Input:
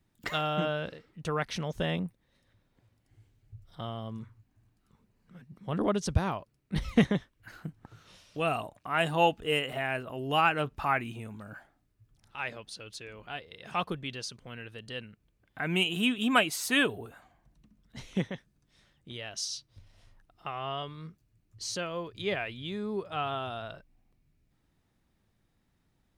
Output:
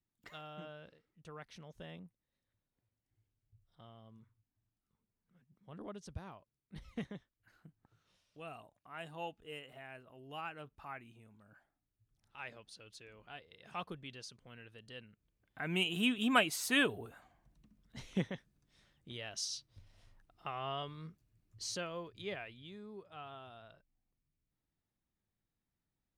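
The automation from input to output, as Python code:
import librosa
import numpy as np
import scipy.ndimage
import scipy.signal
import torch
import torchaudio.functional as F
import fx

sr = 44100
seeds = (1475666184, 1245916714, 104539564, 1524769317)

y = fx.gain(x, sr, db=fx.line((11.38, -19.0), (12.39, -11.0), (15.05, -11.0), (16.05, -4.5), (21.64, -4.5), (22.95, -16.5)))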